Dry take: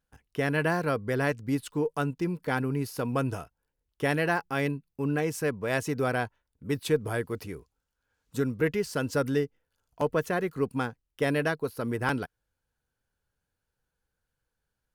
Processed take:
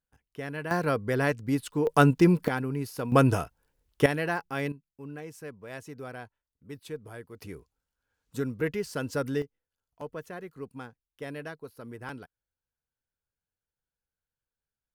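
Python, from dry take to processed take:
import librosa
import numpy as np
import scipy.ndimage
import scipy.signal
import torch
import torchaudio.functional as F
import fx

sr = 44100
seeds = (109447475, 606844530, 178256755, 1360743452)

y = fx.gain(x, sr, db=fx.steps((0.0, -9.0), (0.71, 1.0), (1.87, 10.0), (2.48, -2.0), (3.12, 8.0), (4.06, -3.0), (4.72, -13.0), (7.42, -3.0), (9.42, -12.0)))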